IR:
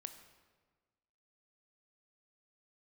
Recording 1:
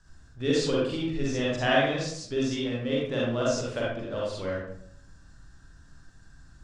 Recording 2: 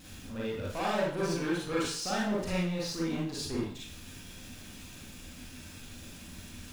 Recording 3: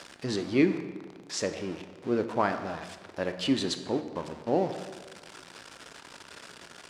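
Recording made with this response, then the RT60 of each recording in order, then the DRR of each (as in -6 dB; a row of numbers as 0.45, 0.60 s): 3; 0.70, 0.50, 1.4 s; -6.0, -6.5, 8.0 dB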